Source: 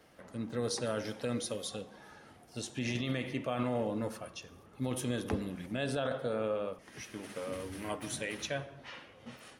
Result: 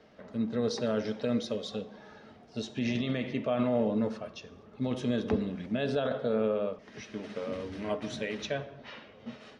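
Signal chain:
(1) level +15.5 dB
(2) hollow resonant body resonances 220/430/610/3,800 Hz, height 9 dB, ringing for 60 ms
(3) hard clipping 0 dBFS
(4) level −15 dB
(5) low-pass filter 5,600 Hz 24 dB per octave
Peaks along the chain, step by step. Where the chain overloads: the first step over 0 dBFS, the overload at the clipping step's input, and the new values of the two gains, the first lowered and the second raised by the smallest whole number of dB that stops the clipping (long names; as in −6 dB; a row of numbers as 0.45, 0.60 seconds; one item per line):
−7.0, −2.0, −2.0, −17.0, −17.0 dBFS
no step passes full scale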